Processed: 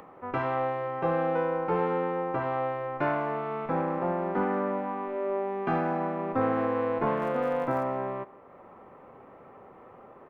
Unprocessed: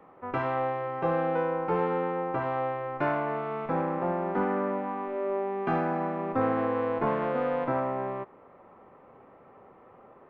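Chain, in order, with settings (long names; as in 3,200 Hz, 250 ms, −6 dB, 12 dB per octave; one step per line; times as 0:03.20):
0:07.16–0:07.82: surface crackle 130 per second −42 dBFS
far-end echo of a speakerphone 170 ms, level −20 dB
upward compression, threshold −44 dBFS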